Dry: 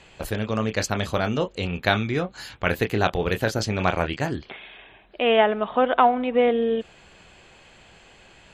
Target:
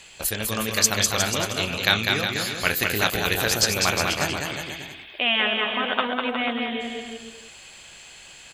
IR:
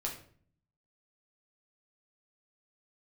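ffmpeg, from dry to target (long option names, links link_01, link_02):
-af "afftfilt=real='re*lt(hypot(re,im),0.708)':imag='im*lt(hypot(re,im),0.708)':win_size=1024:overlap=0.75,aecho=1:1:200|360|488|590.4|672.3:0.631|0.398|0.251|0.158|0.1,crystalizer=i=8.5:c=0,volume=-6dB"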